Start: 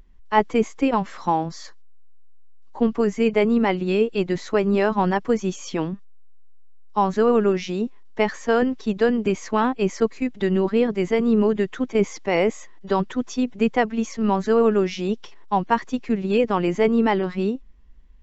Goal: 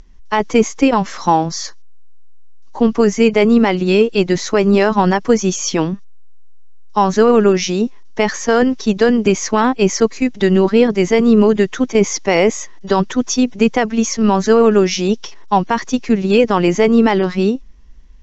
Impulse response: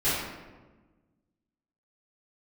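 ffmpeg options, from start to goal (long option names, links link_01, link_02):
-af "lowpass=frequency=6100:width_type=q:width=3.5,aeval=exprs='0.794*(cos(1*acos(clip(val(0)/0.794,-1,1)))-cos(1*PI/2))+0.0891*(cos(3*acos(clip(val(0)/0.794,-1,1)))-cos(3*PI/2))':channel_layout=same,alimiter=level_in=12.5dB:limit=-1dB:release=50:level=0:latency=1,volume=-1dB"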